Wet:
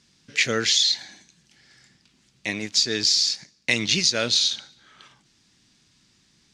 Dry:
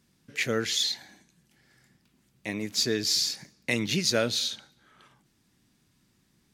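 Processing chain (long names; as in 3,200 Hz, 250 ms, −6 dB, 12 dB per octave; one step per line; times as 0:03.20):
0:02.54–0:04.55: mu-law and A-law mismatch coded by A
parametric band 5,900 Hz +15 dB 2.6 octaves
downward compressor 6 to 1, threshold −15 dBFS, peak gain reduction 8.5 dB
high-frequency loss of the air 82 metres
level +2 dB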